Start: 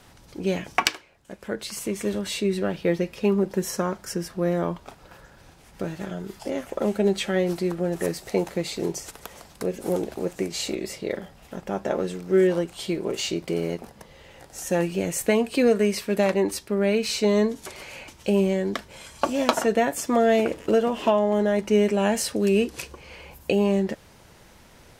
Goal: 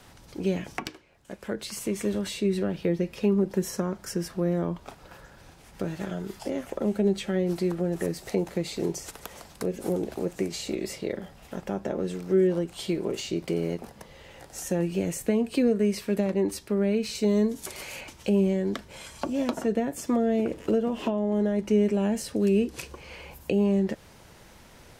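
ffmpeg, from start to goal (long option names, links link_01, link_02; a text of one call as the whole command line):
ffmpeg -i in.wav -filter_complex "[0:a]asettb=1/sr,asplit=3[link_01][link_02][link_03];[link_01]atrim=end=17.154[link_04];[link_02]atrim=start=17.15:end=18.01,asetpts=PTS-STARTPTS,afade=type=in:duration=0.004:curve=qsin,afade=type=out:start_time=0.856:duration=0.004:curve=qsin,highshelf=frequency=6900:gain=10.5[link_05];[link_03]atrim=start=18.006[link_06];[link_04][link_05]acrossfade=duration=0.004:curve1=hsin:curve2=qsin[link_07];[link_07][link_06]acrossfade=duration=0.004:curve1=qsin:curve2=hsin,acrossover=split=410[link_08][link_09];[link_09]acompressor=threshold=-33dB:ratio=10[link_10];[link_08][link_10]amix=inputs=2:normalize=0" out.wav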